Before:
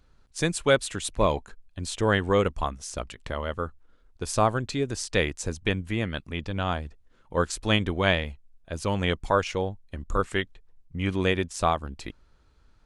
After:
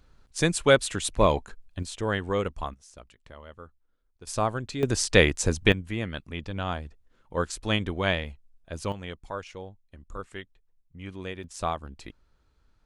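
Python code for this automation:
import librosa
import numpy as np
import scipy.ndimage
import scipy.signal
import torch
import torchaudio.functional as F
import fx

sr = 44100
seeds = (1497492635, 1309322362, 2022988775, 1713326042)

y = fx.gain(x, sr, db=fx.steps((0.0, 2.0), (1.83, -5.0), (2.74, -15.0), (4.27, -4.0), (4.83, 6.0), (5.72, -3.0), (8.92, -12.5), (11.44, -5.5)))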